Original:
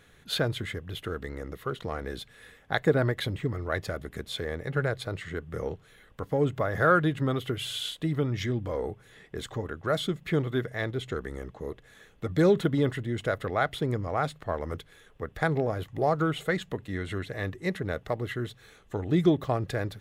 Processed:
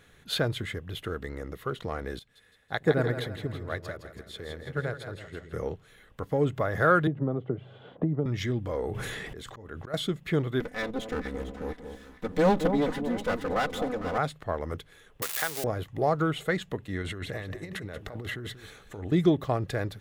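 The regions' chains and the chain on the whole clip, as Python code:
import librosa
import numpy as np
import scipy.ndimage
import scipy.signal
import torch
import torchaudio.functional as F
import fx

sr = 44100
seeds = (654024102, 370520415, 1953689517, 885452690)

y = fx.chain(x, sr, fx.echo_split(split_hz=420.0, low_ms=99, high_ms=164, feedback_pct=52, wet_db=-6),
    fx.upward_expand(threshold_db=-41.0, expansion=1.5), at=(2.19, 5.53))
y = fx.chain(y, sr, fx.cheby1_bandpass(low_hz=140.0, high_hz=720.0, order=2),
    fx.band_squash(depth_pct=100), at=(7.07, 8.26))
y = fx.chain(y, sr, fx.auto_swell(attack_ms=290.0),
    fx.sustainer(db_per_s=20.0), at=(8.83, 9.94))
y = fx.chain(y, sr, fx.lower_of_two(delay_ms=4.0),
    fx.peak_eq(hz=180.0, db=3.5, octaves=0.98),
    fx.echo_alternate(ms=226, hz=1000.0, feedback_pct=62, wet_db=-7.5), at=(10.6, 14.18))
y = fx.chain(y, sr, fx.crossing_spikes(level_db=-19.5),
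    fx.highpass(hz=1400.0, slope=6),
    fx.band_squash(depth_pct=70), at=(15.22, 15.64))
y = fx.chain(y, sr, fx.over_compress(threshold_db=-37.0, ratio=-1.0),
    fx.echo_single(ms=185, db=-12.5), at=(17.02, 19.12))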